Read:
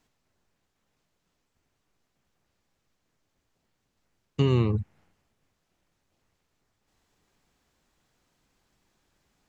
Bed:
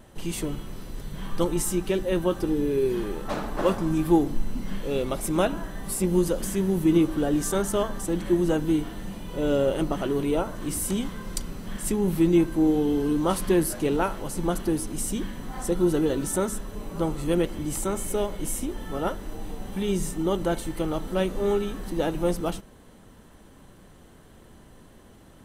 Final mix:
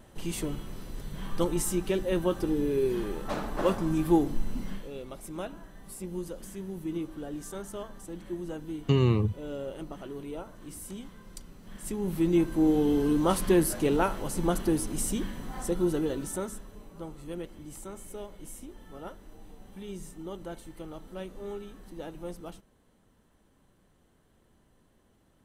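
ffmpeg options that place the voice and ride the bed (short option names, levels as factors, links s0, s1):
-filter_complex "[0:a]adelay=4500,volume=0.944[s0];[1:a]volume=3.16,afade=t=out:st=4.62:d=0.29:silence=0.281838,afade=t=in:st=11.6:d=1.28:silence=0.223872,afade=t=out:st=14.98:d=1.97:silence=0.211349[s1];[s0][s1]amix=inputs=2:normalize=0"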